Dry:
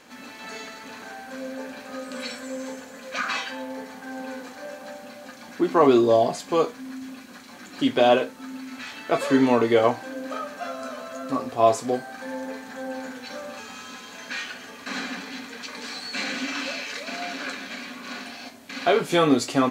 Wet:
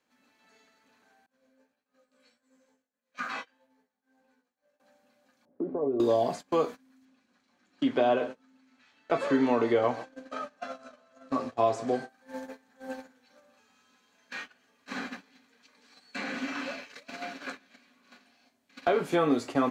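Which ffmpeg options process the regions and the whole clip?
-filter_complex "[0:a]asettb=1/sr,asplit=3[s0][s1][s2];[s0]atrim=end=1.264[s3];[s1]atrim=start=1.26:end=4.8,asetpts=PTS-STARTPTS,afade=t=in:d=0.004:c=qsin,afade=t=out:st=3.536:d=0.004:c=qsin,agate=range=0.0224:threshold=0.0316:ratio=3:release=100:detection=peak,flanger=delay=16:depth=2.7:speed=1.6[s4];[s2]atrim=start=4.796[s5];[s3][s4]acrossfade=d=0.004:c1=hsin:c2=qsin[s6];[s6][s5]acrossfade=d=0.004:c1=qsin:c2=hsin,asettb=1/sr,asplit=3[s7][s8][s9];[s7]atrim=end=5.454[s10];[s8]atrim=start=5.45:end=6,asetpts=PTS-STARTPTS,afade=t=in:d=0.004:c=qsin,afade=t=out:st=0.546:d=0.004:c=qsin,aecho=1:1:7.1:0.42,atrim=end_sample=24255,acompressor=threshold=0.0355:ratio=4:attack=3.2:release=140:knee=1:detection=peak,lowpass=f=500:t=q:w=2.3[s11];[s9]atrim=start=5.996[s12];[s10][s11]acrossfade=d=0.004:c1=hsin:c2=qsin[s13];[s13][s12]acrossfade=d=0.004:c1=qsin:c2=hsin,asettb=1/sr,asplit=3[s14][s15][s16];[s14]atrim=end=7.054[s17];[s15]atrim=start=7.05:end=12.09,asetpts=PTS-STARTPTS,afade=t=in:d=0.004:c=qsin,afade=t=out:st=5.036:d=0.004:c=qsin,lowpass=7000,aecho=1:1:132:0.106,atrim=end_sample=222264[s18];[s16]atrim=start=12.086[s19];[s17][s18]acrossfade=d=0.004:c1=hsin:c2=qsin[s20];[s20][s19]acrossfade=d=0.004:c1=qsin:c2=hsin,agate=range=0.0708:threshold=0.0282:ratio=16:detection=peak,acrossover=split=180|2100[s21][s22][s23];[s21]acompressor=threshold=0.01:ratio=4[s24];[s22]acompressor=threshold=0.126:ratio=4[s25];[s23]acompressor=threshold=0.00631:ratio=4[s26];[s24][s25][s26]amix=inputs=3:normalize=0,volume=0.708"

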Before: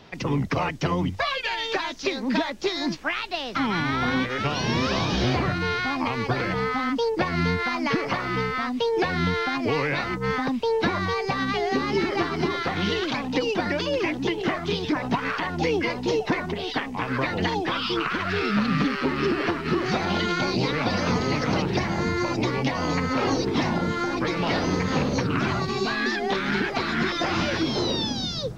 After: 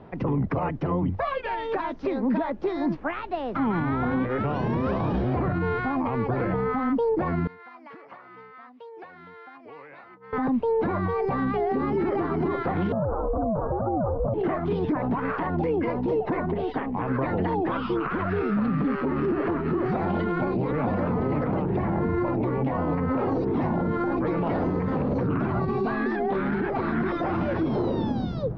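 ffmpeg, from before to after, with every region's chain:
-filter_complex "[0:a]asettb=1/sr,asplit=3[s0][s1][s2];[s0]atrim=end=7.474[s3];[s1]atrim=start=7.47:end=10.33,asetpts=PTS-STARTPTS,afade=t=in:d=0.004:c=qsin,afade=t=out:st=2.856:d=0.004:c=qsin,lowpass=f=1700:p=1,aderivative[s4];[s2]atrim=start=10.326[s5];[s3][s4]acrossfade=d=0.004:c1=hsin:c2=qsin[s6];[s6][s5]acrossfade=d=0.004:c1=qsin:c2=hsin,asettb=1/sr,asplit=3[s7][s8][s9];[s7]atrim=end=12.924[s10];[s8]atrim=start=12.92:end=14.34,asetpts=PTS-STARTPTS,afade=t=in:d=0.004:c=qsin,afade=t=out:st=1.416:d=0.004:c=qsin,asuperpass=centerf=530:order=20:qfactor=0.5,aeval=exprs='val(0)*sin(2*PI*220*n/s)':c=same,acontrast=50[s11];[s9]atrim=start=14.336[s12];[s10][s11]acrossfade=d=0.004:c1=hsin:c2=qsin[s13];[s13][s12]acrossfade=d=0.004:c1=qsin:c2=hsin,asettb=1/sr,asplit=3[s14][s15][s16];[s14]atrim=end=20.244[s17];[s15]atrim=start=20.24:end=23.18,asetpts=PTS-STARTPTS,afade=t=in:d=0.004:c=qsin,afade=t=out:st=2.936:d=0.004:c=qsin,equalizer=f=5200:t=o:w=0.65:g=-4,adynamicsmooth=sensitivity=6.5:basefreq=2000[s18];[s16]atrim=start=23.176[s19];[s17][s18]acrossfade=d=0.004:c1=hsin:c2=qsin[s20];[s20][s19]acrossfade=d=0.004:c1=qsin:c2=hsin,lowpass=1000,alimiter=limit=0.075:level=0:latency=1:release=38,volume=1.68"

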